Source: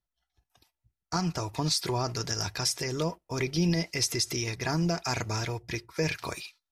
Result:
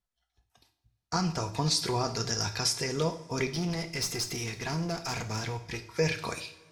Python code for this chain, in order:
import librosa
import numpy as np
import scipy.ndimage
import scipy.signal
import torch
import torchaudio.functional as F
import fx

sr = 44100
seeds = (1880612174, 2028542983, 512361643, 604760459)

y = scipy.signal.sosfilt(scipy.signal.butter(2, 11000.0, 'lowpass', fs=sr, output='sos'), x)
y = fx.tube_stage(y, sr, drive_db=26.0, bias=0.5, at=(3.49, 5.83))
y = fx.rev_double_slope(y, sr, seeds[0], early_s=0.45, late_s=2.4, knee_db=-19, drr_db=6.0)